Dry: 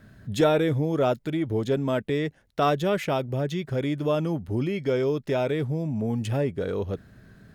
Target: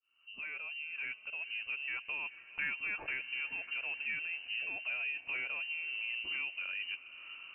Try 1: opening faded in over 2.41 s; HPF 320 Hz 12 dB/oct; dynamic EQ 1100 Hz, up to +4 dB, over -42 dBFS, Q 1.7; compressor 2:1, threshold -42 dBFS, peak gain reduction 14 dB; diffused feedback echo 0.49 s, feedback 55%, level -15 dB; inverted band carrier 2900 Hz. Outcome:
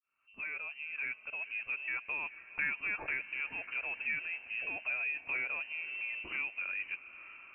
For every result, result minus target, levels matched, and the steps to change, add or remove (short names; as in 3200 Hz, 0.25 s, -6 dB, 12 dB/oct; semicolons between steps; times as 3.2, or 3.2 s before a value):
250 Hz band +3.0 dB; compressor: peak gain reduction -3 dB
remove: HPF 320 Hz 12 dB/oct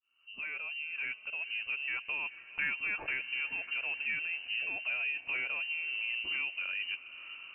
compressor: peak gain reduction -3 dB
change: compressor 2:1, threshold -48 dBFS, peak gain reduction 17 dB